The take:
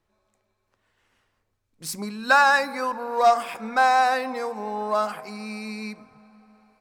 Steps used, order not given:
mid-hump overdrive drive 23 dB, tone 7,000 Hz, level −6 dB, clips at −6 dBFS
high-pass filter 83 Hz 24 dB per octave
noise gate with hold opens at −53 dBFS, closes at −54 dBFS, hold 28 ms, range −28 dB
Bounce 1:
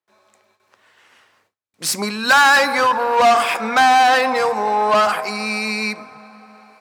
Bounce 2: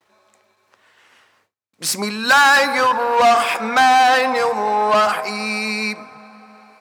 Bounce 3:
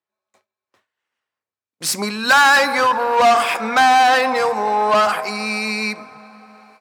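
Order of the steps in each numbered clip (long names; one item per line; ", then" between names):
mid-hump overdrive, then high-pass filter, then noise gate with hold
mid-hump overdrive, then noise gate with hold, then high-pass filter
noise gate with hold, then mid-hump overdrive, then high-pass filter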